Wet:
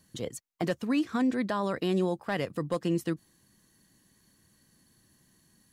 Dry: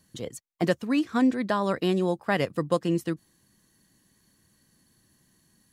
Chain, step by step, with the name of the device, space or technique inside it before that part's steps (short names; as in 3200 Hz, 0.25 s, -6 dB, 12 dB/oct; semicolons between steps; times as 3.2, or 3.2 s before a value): clipper into limiter (hard clip -13.5 dBFS, distortion -27 dB; limiter -19.5 dBFS, peak gain reduction 6 dB)